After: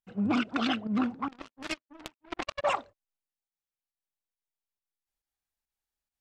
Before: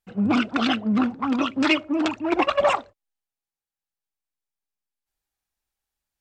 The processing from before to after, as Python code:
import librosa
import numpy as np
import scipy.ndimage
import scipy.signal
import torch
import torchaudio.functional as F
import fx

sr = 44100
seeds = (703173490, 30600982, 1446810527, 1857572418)

y = fx.power_curve(x, sr, exponent=3.0, at=(1.28, 2.64))
y = fx.volume_shaper(y, sr, bpm=138, per_beat=1, depth_db=-11, release_ms=108.0, shape='fast start')
y = F.gain(torch.from_numpy(y), -6.5).numpy()